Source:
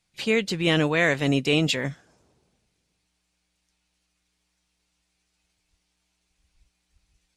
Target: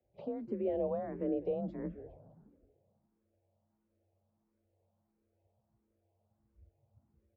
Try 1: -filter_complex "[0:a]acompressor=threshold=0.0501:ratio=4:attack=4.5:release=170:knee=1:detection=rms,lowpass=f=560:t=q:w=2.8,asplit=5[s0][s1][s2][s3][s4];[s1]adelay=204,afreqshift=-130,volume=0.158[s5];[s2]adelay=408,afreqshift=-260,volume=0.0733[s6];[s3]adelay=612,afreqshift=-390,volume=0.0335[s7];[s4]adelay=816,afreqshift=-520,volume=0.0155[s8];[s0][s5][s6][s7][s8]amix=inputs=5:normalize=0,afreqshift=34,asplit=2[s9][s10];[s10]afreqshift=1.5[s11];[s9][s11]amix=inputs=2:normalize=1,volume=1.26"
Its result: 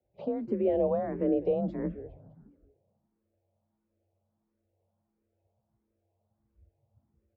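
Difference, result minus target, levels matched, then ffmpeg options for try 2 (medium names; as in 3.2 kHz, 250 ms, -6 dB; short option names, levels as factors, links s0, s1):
compression: peak gain reduction -7 dB
-filter_complex "[0:a]acompressor=threshold=0.0168:ratio=4:attack=4.5:release=170:knee=1:detection=rms,lowpass=f=560:t=q:w=2.8,asplit=5[s0][s1][s2][s3][s4];[s1]adelay=204,afreqshift=-130,volume=0.158[s5];[s2]adelay=408,afreqshift=-260,volume=0.0733[s6];[s3]adelay=612,afreqshift=-390,volume=0.0335[s7];[s4]adelay=816,afreqshift=-520,volume=0.0155[s8];[s0][s5][s6][s7][s8]amix=inputs=5:normalize=0,afreqshift=34,asplit=2[s9][s10];[s10]afreqshift=1.5[s11];[s9][s11]amix=inputs=2:normalize=1,volume=1.26"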